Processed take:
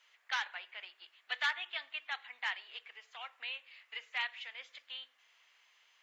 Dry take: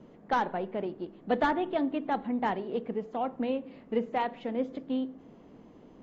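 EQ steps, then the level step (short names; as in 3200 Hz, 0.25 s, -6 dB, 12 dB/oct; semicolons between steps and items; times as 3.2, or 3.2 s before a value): ladder high-pass 1700 Hz, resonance 25%; +11.5 dB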